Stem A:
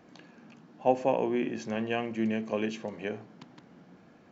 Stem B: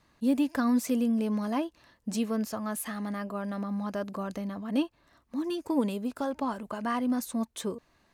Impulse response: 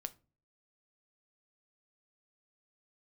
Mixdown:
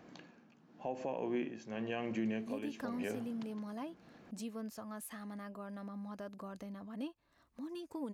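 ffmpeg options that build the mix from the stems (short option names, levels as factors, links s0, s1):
-filter_complex "[0:a]tremolo=f=0.93:d=0.75,alimiter=limit=0.0944:level=0:latency=1:release=245,volume=0.944[s0];[1:a]acompressor=threshold=0.00141:ratio=1.5,adelay=2250,volume=0.708[s1];[s0][s1]amix=inputs=2:normalize=0,alimiter=level_in=1.5:limit=0.0631:level=0:latency=1:release=166,volume=0.668"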